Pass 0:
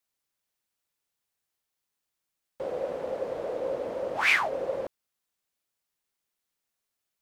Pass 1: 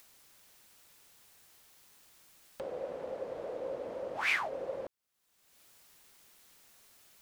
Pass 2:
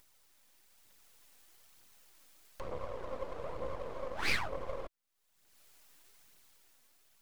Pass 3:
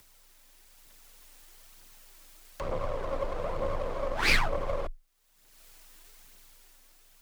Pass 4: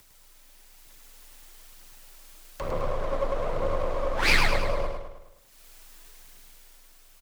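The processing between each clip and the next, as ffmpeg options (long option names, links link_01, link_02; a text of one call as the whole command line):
ffmpeg -i in.wav -af "acompressor=mode=upward:threshold=-30dB:ratio=2.5,volume=-7.5dB" out.wav
ffmpeg -i in.wav -af "dynaudnorm=framelen=130:gausssize=13:maxgain=5dB,aeval=exprs='max(val(0),0)':channel_layout=same,aphaser=in_gain=1:out_gain=1:delay=4.1:decay=0.34:speed=1.1:type=triangular,volume=-3.5dB" out.wav
ffmpeg -i in.wav -af "afreqshift=20,volume=8dB" out.wav
ffmpeg -i in.wav -af "aecho=1:1:105|210|315|420|525|630:0.562|0.281|0.141|0.0703|0.0351|0.0176,volume=2dB" out.wav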